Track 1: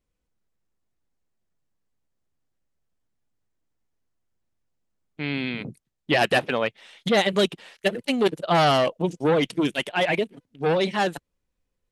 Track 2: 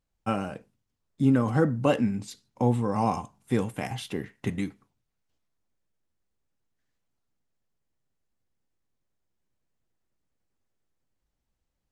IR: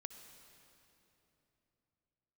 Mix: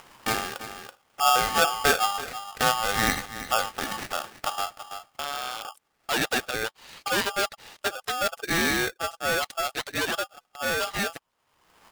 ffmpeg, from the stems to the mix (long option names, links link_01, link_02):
-filter_complex "[0:a]agate=range=-10dB:threshold=-54dB:ratio=16:detection=peak,acontrast=62,volume=-11dB[link_01];[1:a]acrusher=samples=14:mix=1:aa=0.000001:lfo=1:lforange=8.4:lforate=0.52,volume=2dB,asplit=2[link_02][link_03];[link_03]volume=-16dB,aecho=0:1:330:1[link_04];[link_01][link_02][link_04]amix=inputs=3:normalize=0,highpass=frequency=160:poles=1,acompressor=mode=upward:threshold=-27dB:ratio=2.5,aeval=exprs='val(0)*sgn(sin(2*PI*1000*n/s))':channel_layout=same"